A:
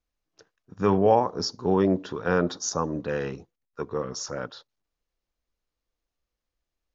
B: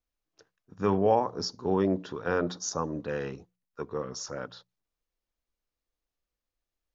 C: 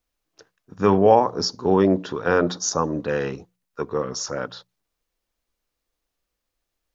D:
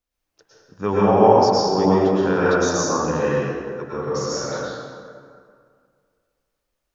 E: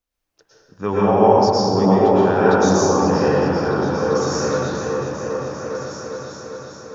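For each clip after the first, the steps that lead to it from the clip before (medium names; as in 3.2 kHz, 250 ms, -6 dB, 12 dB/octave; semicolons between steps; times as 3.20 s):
hum notches 60/120/180 Hz; trim -4 dB
bass shelf 140 Hz -3.5 dB; trim +9 dB
plate-style reverb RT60 2.1 s, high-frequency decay 0.55×, pre-delay 95 ms, DRR -8 dB; trim -6 dB
delay with an opening low-pass 399 ms, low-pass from 200 Hz, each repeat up 2 oct, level 0 dB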